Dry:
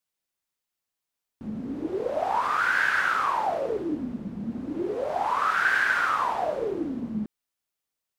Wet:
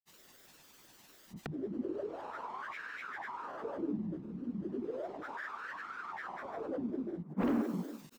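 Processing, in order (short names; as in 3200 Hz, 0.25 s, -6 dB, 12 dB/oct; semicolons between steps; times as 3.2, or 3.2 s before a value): in parallel at -1.5 dB: limiter -23 dBFS, peak gain reduction 10.5 dB; on the sum: low shelf 160 Hz -3 dB; comb 0.8 ms, depth 50%; on a send: band-limited delay 0.165 s, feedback 35%, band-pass 880 Hz, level -6 dB; on the sum: vocal rider within 3 dB 0.5 s; flipped gate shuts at -28 dBFS, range -41 dB; sine folder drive 20 dB, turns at -27 dBFS; small resonant body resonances 270/430 Hz, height 9 dB, ringing for 25 ms; grains, pitch spread up and down by 7 st; bell 10000 Hz -6.5 dB 0.34 oct; gain -4.5 dB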